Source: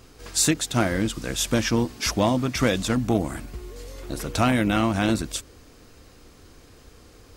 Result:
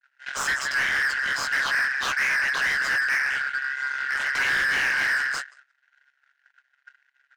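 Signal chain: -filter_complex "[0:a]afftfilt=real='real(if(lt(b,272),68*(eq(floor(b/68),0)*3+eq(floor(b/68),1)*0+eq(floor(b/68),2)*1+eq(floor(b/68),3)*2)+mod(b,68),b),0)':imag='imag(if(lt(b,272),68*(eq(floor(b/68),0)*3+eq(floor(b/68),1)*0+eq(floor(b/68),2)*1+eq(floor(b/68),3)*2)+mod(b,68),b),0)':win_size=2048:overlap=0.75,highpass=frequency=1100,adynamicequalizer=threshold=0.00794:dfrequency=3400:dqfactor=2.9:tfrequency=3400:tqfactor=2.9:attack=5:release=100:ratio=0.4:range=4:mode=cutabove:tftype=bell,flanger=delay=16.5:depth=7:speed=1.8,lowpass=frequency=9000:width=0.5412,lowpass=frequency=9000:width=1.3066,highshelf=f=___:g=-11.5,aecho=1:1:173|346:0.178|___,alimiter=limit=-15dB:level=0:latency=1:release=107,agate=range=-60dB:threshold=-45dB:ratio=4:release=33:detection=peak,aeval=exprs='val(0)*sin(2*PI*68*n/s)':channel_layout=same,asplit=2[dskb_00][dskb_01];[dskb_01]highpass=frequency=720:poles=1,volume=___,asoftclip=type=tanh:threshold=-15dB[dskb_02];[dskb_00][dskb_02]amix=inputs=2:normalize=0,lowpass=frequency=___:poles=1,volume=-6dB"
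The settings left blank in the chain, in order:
5400, 0.0373, 27dB, 2700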